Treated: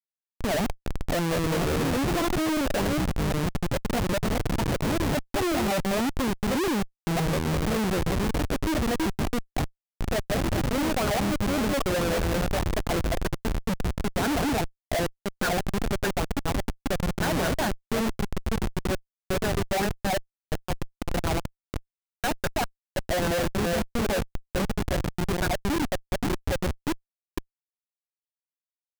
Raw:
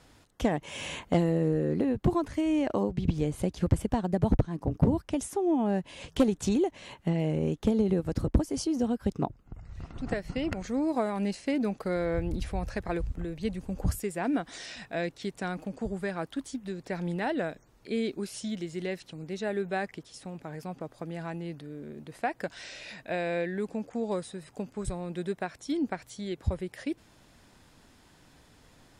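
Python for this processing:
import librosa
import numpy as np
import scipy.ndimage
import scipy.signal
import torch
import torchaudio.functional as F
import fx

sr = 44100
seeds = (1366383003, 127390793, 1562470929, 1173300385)

y = fx.reverse_delay(x, sr, ms=277, wet_db=-2.5)
y = fx.filter_lfo_lowpass(y, sr, shape='sine', hz=5.0, low_hz=570.0, high_hz=1600.0, q=6.2)
y = fx.schmitt(y, sr, flips_db=-27.0)
y = y * 10.0 ** (1.0 / 20.0)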